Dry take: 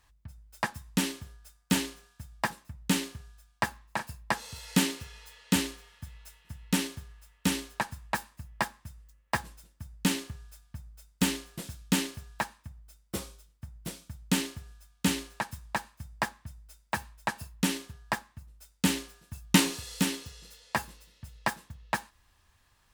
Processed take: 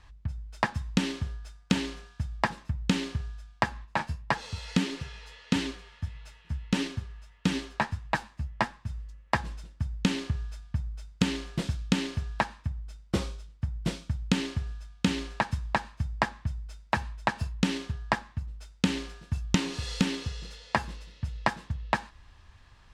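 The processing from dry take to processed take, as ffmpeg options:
-filter_complex "[0:a]asplit=3[s0][s1][s2];[s0]afade=t=out:st=3.84:d=0.02[s3];[s1]flanger=delay=5.6:depth=8.8:regen=37:speed=1.6:shape=triangular,afade=t=in:st=3.84:d=0.02,afade=t=out:st=8.88:d=0.02[s4];[s2]afade=t=in:st=8.88:d=0.02[s5];[s3][s4][s5]amix=inputs=3:normalize=0,lowpass=4900,lowshelf=f=170:g=6.5,acompressor=threshold=0.0355:ratio=12,volume=2.51"

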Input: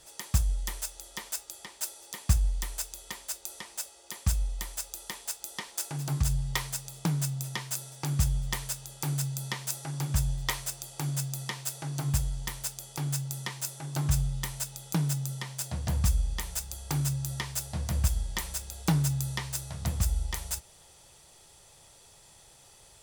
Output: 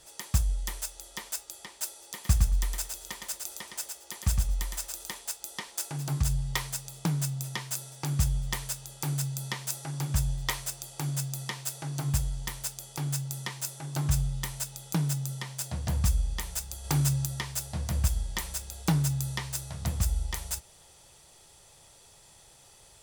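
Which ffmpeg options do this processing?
-filter_complex "[0:a]asettb=1/sr,asplit=3[s0][s1][s2];[s0]atrim=end=2.134[s3];[s1]atrim=start=2.13:end=5.2,asetpts=PTS-STARTPTS,afade=t=in:d=0.004:c=qsin,afade=t=out:st=3.066:d=0.004:c=qsin,aecho=1:1:112|224|336:0.596|0.0953|0.0152,atrim=end_sample=135387[s4];[s2]atrim=start=5.196[s5];[s3][s4]acrossfade=d=0.004:c1=hsin:c2=qsin[s6];[s6][s5]acrossfade=d=0.004:c1=qsin:c2=hsin,asplit=3[s7][s8][s9];[s7]atrim=end=16.842[s10];[s8]atrim=start=16.838:end=17.262,asetpts=PTS-STARTPTS,volume=1.5[s11];[s9]atrim=start=17.258[s12];[s10][s11]acrossfade=d=0.004:c1=hsin:c2=hsin[s13];[s13][s12]acrossfade=d=0.004:c1=hsin:c2=hsin"

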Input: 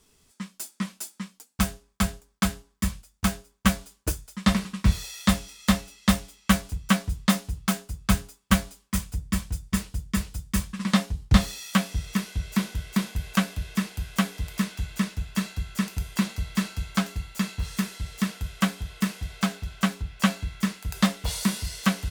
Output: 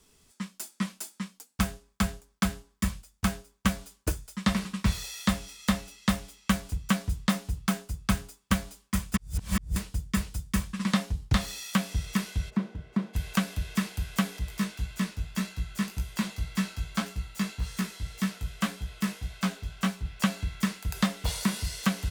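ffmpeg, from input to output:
-filter_complex "[0:a]asplit=3[s0][s1][s2];[s0]afade=t=out:st=12.49:d=0.02[s3];[s1]bandpass=f=300:t=q:w=0.6,afade=t=in:st=12.49:d=0.02,afade=t=out:st=13.13:d=0.02[s4];[s2]afade=t=in:st=13.13:d=0.02[s5];[s3][s4][s5]amix=inputs=3:normalize=0,asettb=1/sr,asplit=3[s6][s7][s8];[s6]atrim=end=14.394[s9];[s7]atrim=start=14.39:end=20.05,asetpts=PTS-STARTPTS,afade=t=in:d=0.004:c=qsin,afade=t=out:st=5.656:d=0.004:c=qsin,flanger=delay=16:depth=3.7:speed=1.8[s10];[s8]atrim=start=20.046[s11];[s9][s10]acrossfade=d=0.004:c1=hsin:c2=qsin[s12];[s12][s11]acrossfade=d=0.004:c1=qsin:c2=hsin,asplit=3[s13][s14][s15];[s13]atrim=end=9.142[s16];[s14]atrim=start=9.138:end=9.762,asetpts=PTS-STARTPTS,areverse[s17];[s15]atrim=start=9.758[s18];[s16][s17]acrossfade=d=0.004:c1=hsin:c2=hsin[s19];[s19][s18]acrossfade=d=0.004:c1=hsin:c2=hsin,acrossover=split=580|1400|2800[s20][s21][s22][s23];[s20]acompressor=threshold=0.0794:ratio=4[s24];[s21]acompressor=threshold=0.0178:ratio=4[s25];[s22]acompressor=threshold=0.0178:ratio=4[s26];[s23]acompressor=threshold=0.0178:ratio=4[s27];[s24][s25][s26][s27]amix=inputs=4:normalize=0"

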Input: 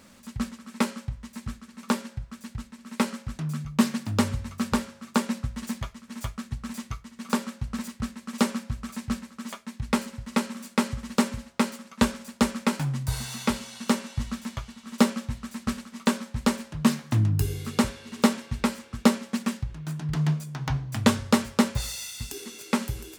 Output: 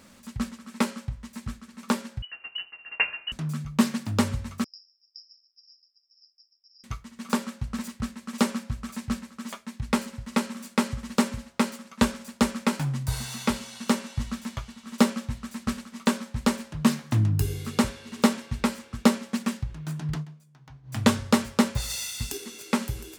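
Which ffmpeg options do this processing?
-filter_complex "[0:a]asettb=1/sr,asplit=3[s0][s1][s2];[s0]atrim=end=2.224[s3];[s1]atrim=start=2.22:end=3.32,asetpts=PTS-STARTPTS,afade=t=in:d=0.004:c=qsin,afade=t=out:st=1.096:d=0.004:c=qsin,lowpass=f=2600:t=q:w=0.5098,lowpass=f=2600:t=q:w=0.6013,lowpass=f=2600:t=q:w=0.9,lowpass=f=2600:t=q:w=2.563,afreqshift=-3000[s4];[s2]atrim=start=3.316[s5];[s3][s4]acrossfade=d=0.004:c1=hsin:c2=qsin[s6];[s6][s5]acrossfade=d=0.004:c1=qsin:c2=hsin,asettb=1/sr,asplit=3[s7][s8][s9];[s7]atrim=end=4.644[s10];[s8]atrim=start=4.64:end=6.84,asetpts=PTS-STARTPTS,afade=t=in:d=0.004:c=qsin,afade=t=out:st=2.196:d=0.004:c=qsin,asuperpass=centerf=5200:order=12:qfactor=7.6[s11];[s9]atrim=start=6.836[s12];[s10][s11]acrossfade=d=0.004:c1=hsin:c2=qsin[s13];[s13][s12]acrossfade=d=0.004:c1=qsin:c2=hsin,asplit=5[s14][s15][s16][s17][s18];[s14]atrim=end=20.26,asetpts=PTS-STARTPTS,afade=t=out:st=20.11:d=0.15:silence=0.0891251[s19];[s15]atrim=start=20.26:end=20.83,asetpts=PTS-STARTPTS,volume=0.0891[s20];[s16]atrim=start=20.83:end=21.902,asetpts=PTS-STARTPTS,afade=t=in:d=0.15:silence=0.0891251[s21];[s17]atrim=start=21.898:end=22.372,asetpts=PTS-STARTPTS,volume=1.5[s22];[s18]atrim=start=22.368[s23];[s19][s20][s21]concat=n=3:v=0:a=1[s24];[s24][s22]acrossfade=d=0.004:c1=hsin:c2=hsin[s25];[s25][s23]acrossfade=d=0.004:c1=hsin:c2=hsin"

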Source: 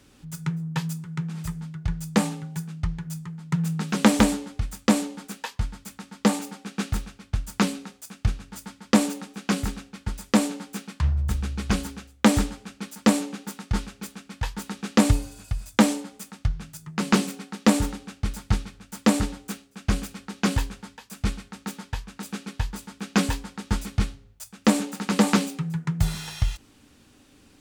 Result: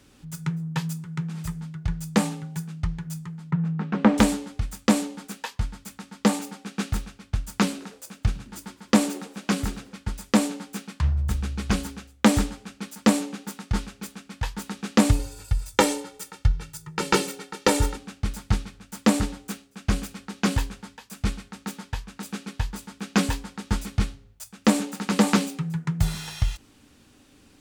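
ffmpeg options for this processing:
-filter_complex "[0:a]asettb=1/sr,asplit=3[s0][s1][s2];[s0]atrim=end=3.514[s3];[s1]atrim=start=3.51:end=4.18,asetpts=PTS-STARTPTS,afade=t=in:d=0.004:c=qsin,afade=t=out:st=0.666:d=0.004:c=qsin,lowpass=1700[s4];[s2]atrim=start=4.176[s5];[s3][s4]acrossfade=d=0.004:c1=hsin:c2=qsin[s6];[s6][s5]acrossfade=d=0.004:c1=qsin:c2=hsin,asettb=1/sr,asplit=3[s7][s8][s9];[s7]atrim=end=7.514[s10];[s8]atrim=start=7.51:end=9.95,asetpts=PTS-STARTPTS,afade=t=in:d=0.004:c=qsin,afade=t=out:st=2.436:d=0.004:c=qsin,asplit=5[s11][s12][s13][s14][s15];[s12]adelay=105,afreqshift=80,volume=0.0708[s16];[s13]adelay=210,afreqshift=160,volume=0.0412[s17];[s14]adelay=315,afreqshift=240,volume=0.0237[s18];[s15]adelay=420,afreqshift=320,volume=0.0138[s19];[s11][s16][s17][s18][s19]amix=inputs=5:normalize=0,atrim=end_sample=107604[s20];[s9]atrim=start=9.946[s21];[s10][s20]acrossfade=d=0.004:c1=hsin:c2=qsin[s22];[s22][s21]acrossfade=d=0.004:c1=qsin:c2=hsin,asettb=1/sr,asplit=3[s23][s24][s25];[s23]atrim=end=15.194[s26];[s24]atrim=start=15.19:end=17.97,asetpts=PTS-STARTPTS,afade=t=in:d=0.004:c=qsin,afade=t=out:st=2.776:d=0.004:c=qsin,aecho=1:1:2.2:0.89,atrim=end_sample=122598[s27];[s25]atrim=start=17.966[s28];[s26][s27]acrossfade=d=0.004:c1=hsin:c2=qsin[s29];[s29][s28]acrossfade=d=0.004:c1=qsin:c2=hsin"

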